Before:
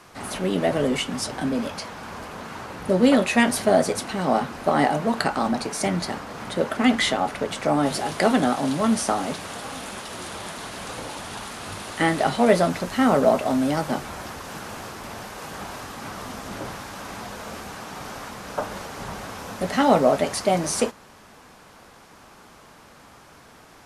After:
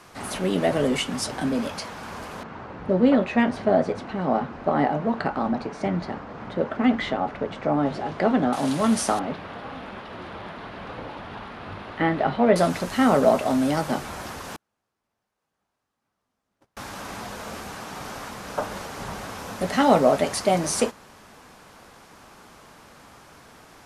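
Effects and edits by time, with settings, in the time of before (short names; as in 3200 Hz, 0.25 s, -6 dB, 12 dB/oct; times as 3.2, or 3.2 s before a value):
2.43–8.53 tape spacing loss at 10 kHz 30 dB
9.19–12.56 air absorption 370 m
14.56–16.77 gate -28 dBFS, range -45 dB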